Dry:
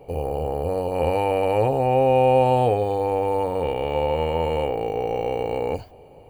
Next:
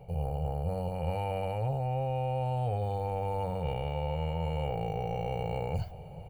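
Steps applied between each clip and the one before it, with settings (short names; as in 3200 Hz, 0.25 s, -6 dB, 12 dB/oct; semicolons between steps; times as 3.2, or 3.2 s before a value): resonant low shelf 210 Hz +6.5 dB, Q 3; comb 1.4 ms, depth 37%; reverse; compressor 6:1, threshold -27 dBFS, peak gain reduction 15.5 dB; reverse; gain -2 dB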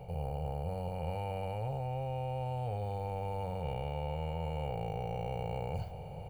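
per-bin compression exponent 0.6; gain -7 dB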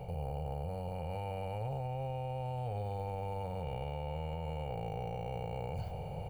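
limiter -32.5 dBFS, peak gain reduction 8 dB; gain +3 dB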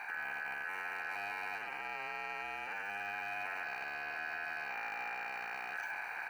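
soft clip -39.5 dBFS, distortion -9 dB; fixed phaser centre 490 Hz, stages 6; ring modulator 1600 Hz; gain +10.5 dB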